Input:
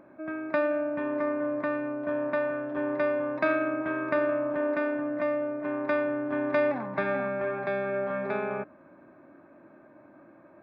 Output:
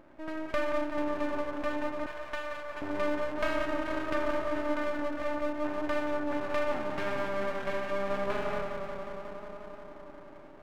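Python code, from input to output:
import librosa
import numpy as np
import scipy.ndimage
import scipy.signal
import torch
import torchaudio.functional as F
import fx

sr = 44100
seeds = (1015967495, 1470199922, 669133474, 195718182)

p1 = fx.echo_tape(x, sr, ms=179, feedback_pct=86, wet_db=-6.0, lp_hz=2800.0, drive_db=14.0, wow_cents=23)
p2 = fx.rider(p1, sr, range_db=5, speed_s=2.0)
p3 = p1 + F.gain(torch.from_numpy(p2), 0.0).numpy()
p4 = fx.cheby2_highpass(p3, sr, hz=200.0, order=4, stop_db=60, at=(2.06, 2.82))
p5 = np.maximum(p4, 0.0)
y = F.gain(torch.from_numpy(p5), -7.0).numpy()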